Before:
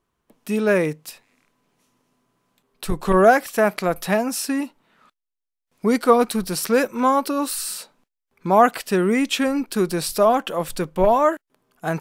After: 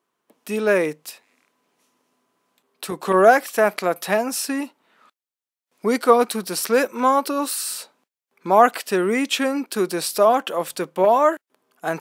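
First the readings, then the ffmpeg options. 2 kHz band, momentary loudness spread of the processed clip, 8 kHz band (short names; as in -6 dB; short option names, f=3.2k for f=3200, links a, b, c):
+1.0 dB, 14 LU, +1.0 dB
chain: -af "highpass=280,volume=1dB"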